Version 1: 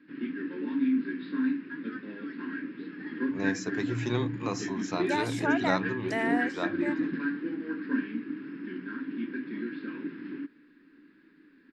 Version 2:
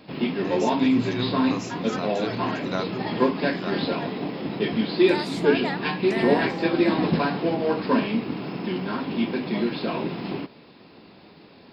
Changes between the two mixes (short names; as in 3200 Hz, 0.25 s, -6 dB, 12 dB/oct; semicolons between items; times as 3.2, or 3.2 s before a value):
first voice: entry -2.95 s; background: remove double band-pass 690 Hz, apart 2.5 oct